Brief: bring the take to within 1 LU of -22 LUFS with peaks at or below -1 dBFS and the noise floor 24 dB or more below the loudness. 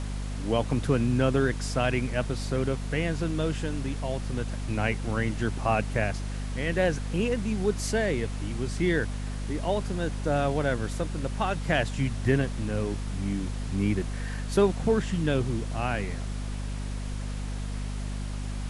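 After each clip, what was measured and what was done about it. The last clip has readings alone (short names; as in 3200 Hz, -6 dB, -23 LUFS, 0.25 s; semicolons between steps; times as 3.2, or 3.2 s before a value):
hum 50 Hz; harmonics up to 250 Hz; hum level -30 dBFS; noise floor -33 dBFS; noise floor target -53 dBFS; loudness -29.0 LUFS; peak -10.5 dBFS; loudness target -22.0 LUFS
-> notches 50/100/150/200/250 Hz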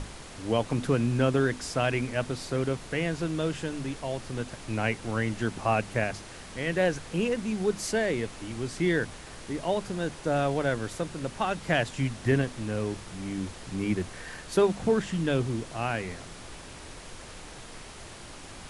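hum none; noise floor -45 dBFS; noise floor target -54 dBFS
-> noise print and reduce 9 dB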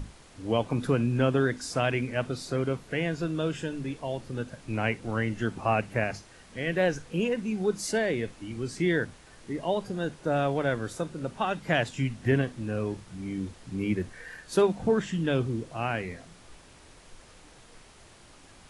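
noise floor -53 dBFS; noise floor target -54 dBFS
-> noise print and reduce 6 dB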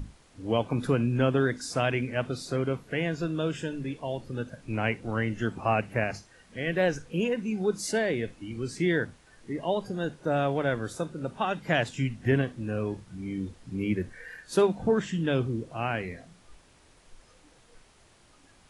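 noise floor -59 dBFS; loudness -29.5 LUFS; peak -10.5 dBFS; loudness target -22.0 LUFS
-> gain +7.5 dB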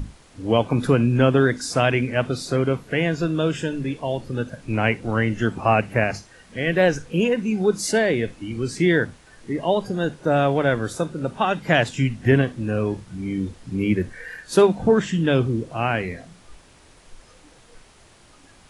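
loudness -22.0 LUFS; peak -3.0 dBFS; noise floor -51 dBFS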